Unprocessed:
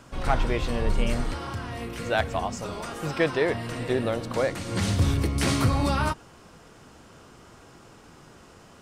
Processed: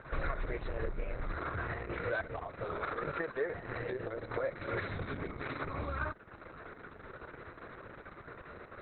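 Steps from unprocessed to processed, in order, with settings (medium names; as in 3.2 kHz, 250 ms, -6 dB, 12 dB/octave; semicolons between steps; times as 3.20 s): 4.66–5.78 s: high-pass 130 Hz 12 dB/octave; bass shelf 490 Hz -5 dB; compression 8:1, threshold -38 dBFS, peak gain reduction 18 dB; static phaser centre 840 Hz, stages 6; trim +8.5 dB; Opus 6 kbps 48 kHz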